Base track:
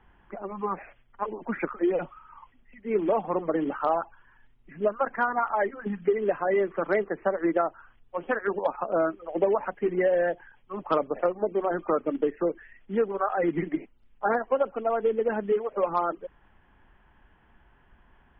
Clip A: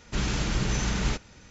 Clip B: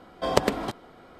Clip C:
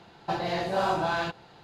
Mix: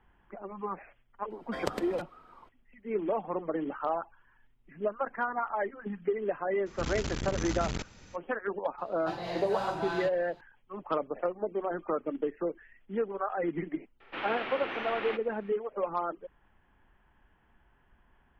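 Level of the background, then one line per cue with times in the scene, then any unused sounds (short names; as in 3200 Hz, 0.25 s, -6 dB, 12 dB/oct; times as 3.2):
base track -6 dB
1.3 add B -12 dB
6.66 add A -2.5 dB + core saturation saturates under 330 Hz
8.78 add C -7.5 dB
14 add A -1 dB + mistuned SSB -82 Hz 430–3100 Hz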